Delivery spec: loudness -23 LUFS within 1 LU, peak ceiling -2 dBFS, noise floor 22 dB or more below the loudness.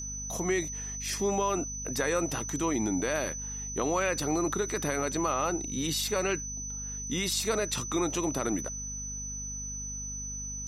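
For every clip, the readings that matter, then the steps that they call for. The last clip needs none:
hum 50 Hz; harmonics up to 250 Hz; hum level -40 dBFS; steady tone 6000 Hz; tone level -36 dBFS; loudness -30.5 LUFS; peak -16.0 dBFS; loudness target -23.0 LUFS
-> de-hum 50 Hz, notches 5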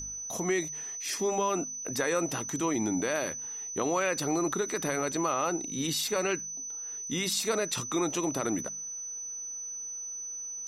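hum none; steady tone 6000 Hz; tone level -36 dBFS
-> notch 6000 Hz, Q 30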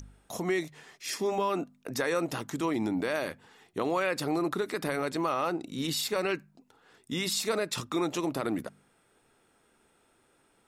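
steady tone none; loudness -31.5 LUFS; peak -16.0 dBFS; loudness target -23.0 LUFS
-> gain +8.5 dB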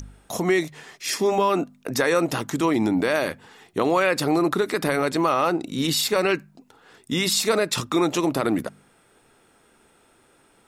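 loudness -23.0 LUFS; peak -7.5 dBFS; noise floor -59 dBFS

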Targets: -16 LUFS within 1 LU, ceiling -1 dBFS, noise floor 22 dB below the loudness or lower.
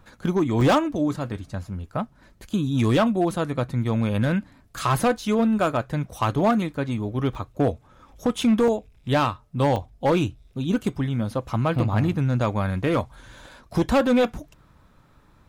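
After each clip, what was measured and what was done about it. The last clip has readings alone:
clipped 1.5%; flat tops at -14.0 dBFS; dropouts 4; longest dropout 1.7 ms; loudness -24.0 LUFS; peak -14.0 dBFS; loudness target -16.0 LUFS
-> clip repair -14 dBFS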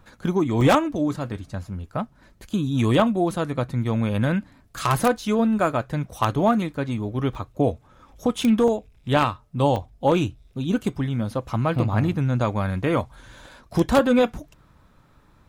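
clipped 0.0%; dropouts 4; longest dropout 1.7 ms
-> interpolate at 0.61/7.35/8.68/9.76, 1.7 ms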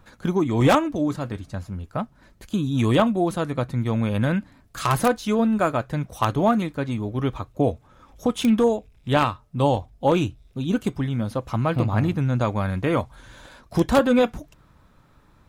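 dropouts 0; loudness -23.5 LUFS; peak -5.0 dBFS; loudness target -16.0 LUFS
-> gain +7.5 dB; limiter -1 dBFS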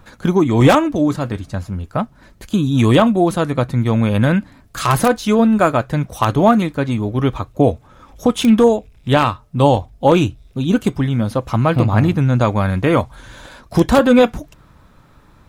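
loudness -16.0 LUFS; peak -1.0 dBFS; noise floor -49 dBFS

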